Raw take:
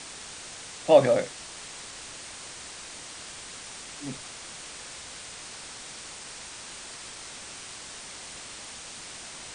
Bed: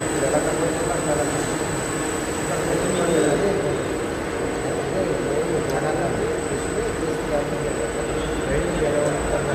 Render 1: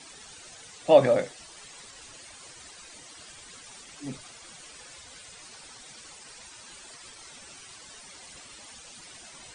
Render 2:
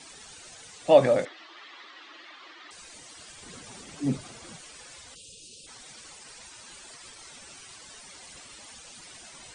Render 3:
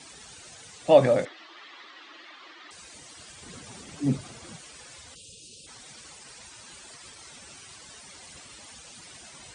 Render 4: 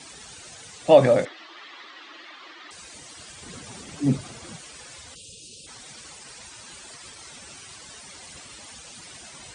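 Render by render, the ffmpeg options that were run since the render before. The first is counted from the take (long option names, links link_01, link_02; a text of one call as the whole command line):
ffmpeg -i in.wav -af "afftdn=noise_reduction=13:noise_floor=-43" out.wav
ffmpeg -i in.wav -filter_complex "[0:a]asettb=1/sr,asplit=3[link_01][link_02][link_03];[link_01]atrim=end=1.254[link_04];[link_02]atrim=start=1.25:end=2.71,asetpts=PTS-STARTPTS,afade=type=in:duration=0.004:curve=qsin,afade=type=out:start_time=1.456:duration=0.004:curve=qsin,highpass=frequency=300:width=0.5412,highpass=frequency=300:width=1.3066,equalizer=frequency=320:width_type=q:width=4:gain=9,equalizer=frequency=470:width_type=q:width=4:gain=-8,equalizer=frequency=1200:width_type=q:width=4:gain=8,equalizer=frequency=1900:width_type=q:width=4:gain=6,equalizer=frequency=3400:width_type=q:width=4:gain=4,lowpass=frequency=4100:width=0.5412,lowpass=frequency=4100:width=1.3066[link_05];[link_03]atrim=start=2.706[link_06];[link_04][link_05]acrossfade=duration=0.004:curve1=hsin:curve2=qsin[link_07];[link_07][link_06]acrossfade=duration=0.004:curve1=qsin:curve2=hsin,asettb=1/sr,asplit=3[link_08][link_09][link_10];[link_08]atrim=end=3.424[link_11];[link_09]atrim=start=3.42:end=4.58,asetpts=PTS-STARTPTS,afade=type=in:duration=0.004:curve=qsin,afade=type=out:start_time=1.156:duration=0.004:curve=qsin,equalizer=frequency=180:width=0.31:gain=11.5[link_12];[link_10]atrim=start=4.576[link_13];[link_11][link_12]acrossfade=duration=0.004:curve1=hsin:curve2=qsin[link_14];[link_14][link_13]acrossfade=duration=0.004:curve1=qsin:curve2=hsin,asplit=3[link_15][link_16][link_17];[link_15]afade=type=out:start_time=5.14:duration=0.02[link_18];[link_16]asuperstop=centerf=1200:order=20:qfactor=0.59,afade=type=in:start_time=5.14:duration=0.02,afade=type=out:start_time=5.66:duration=0.02[link_19];[link_17]afade=type=in:start_time=5.66:duration=0.02[link_20];[link_18][link_19][link_20]amix=inputs=3:normalize=0" out.wav
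ffmpeg -i in.wav -af "highpass=74,lowshelf=frequency=110:gain=10.5" out.wav
ffmpeg -i in.wav -af "volume=3.5dB,alimiter=limit=-3dB:level=0:latency=1" out.wav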